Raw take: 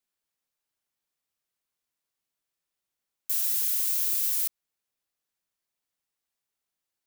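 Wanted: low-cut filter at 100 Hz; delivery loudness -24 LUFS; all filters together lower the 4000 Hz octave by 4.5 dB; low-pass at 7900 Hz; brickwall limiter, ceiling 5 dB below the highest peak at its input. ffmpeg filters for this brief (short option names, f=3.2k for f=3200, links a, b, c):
-af "highpass=100,lowpass=7.9k,equalizer=f=4k:t=o:g=-5.5,volume=15dB,alimiter=limit=-16dB:level=0:latency=1"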